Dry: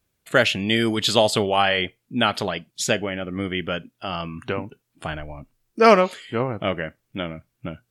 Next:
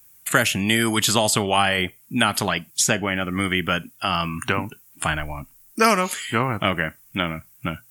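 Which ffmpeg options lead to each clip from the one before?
-filter_complex "[0:a]equalizer=f=500:t=o:w=1:g=-8,equalizer=f=1k:t=o:w=1:g=3,equalizer=f=4k:t=o:w=1:g=-11,crystalizer=i=8:c=0,acrossover=split=550|1300|6800[a][b][c][d];[a]acompressor=threshold=-25dB:ratio=4[e];[b]acompressor=threshold=-30dB:ratio=4[f];[c]acompressor=threshold=-28dB:ratio=4[g];[d]acompressor=threshold=-35dB:ratio=4[h];[e][f][g][h]amix=inputs=4:normalize=0,volume=5dB"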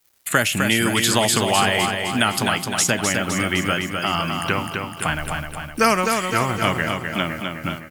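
-filter_complex "[0:a]acrusher=bits=6:mix=0:aa=0.5,asplit=2[a][b];[b]aecho=0:1:256|512|768|1024|1280|1536|1792:0.562|0.309|0.17|0.0936|0.0515|0.0283|0.0156[c];[a][c]amix=inputs=2:normalize=0"

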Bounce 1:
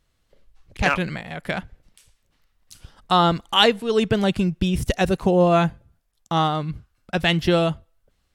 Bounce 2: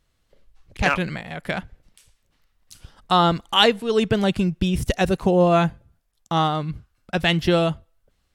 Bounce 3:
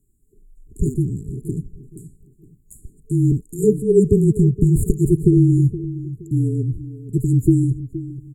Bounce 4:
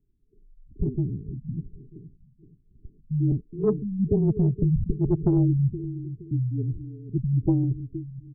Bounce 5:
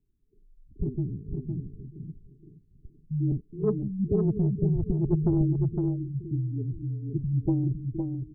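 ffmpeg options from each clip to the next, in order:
-af anull
-filter_complex "[0:a]asplit=2[a][b];[b]adelay=470,lowpass=f=1.7k:p=1,volume=-14dB,asplit=2[c][d];[d]adelay=470,lowpass=f=1.7k:p=1,volume=0.33,asplit=2[e][f];[f]adelay=470,lowpass=f=1.7k:p=1,volume=0.33[g];[a][c][e][g]amix=inputs=4:normalize=0,afftfilt=real='re*(1-between(b*sr/4096,470,6800))':imag='im*(1-between(b*sr/4096,470,6800))':win_size=4096:overlap=0.75,afreqshift=-30,volume=6.5dB"
-af "asoftclip=type=tanh:threshold=-7dB,afftfilt=real='re*lt(b*sr/1024,220*pow(4500/220,0.5+0.5*sin(2*PI*1.2*pts/sr)))':imag='im*lt(b*sr/1024,220*pow(4500/220,0.5+0.5*sin(2*PI*1.2*pts/sr)))':win_size=1024:overlap=0.75,volume=-5.5dB"
-af "aecho=1:1:510:0.562,volume=-3.5dB"

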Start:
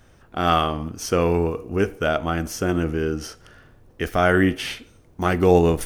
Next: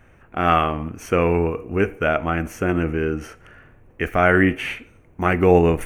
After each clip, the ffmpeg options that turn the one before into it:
-af "highshelf=f=3k:t=q:w=3:g=-7,bandreject=f=5.1k:w=5.4,volume=1dB"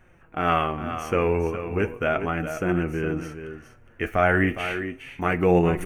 -af "aecho=1:1:412:0.316,flanger=delay=5.3:depth=4.6:regen=50:speed=0.35:shape=triangular"

